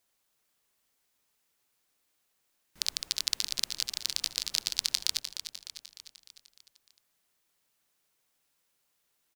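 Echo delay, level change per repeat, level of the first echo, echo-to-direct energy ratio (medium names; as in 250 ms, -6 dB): 302 ms, -5.0 dB, -10.0 dB, -8.5 dB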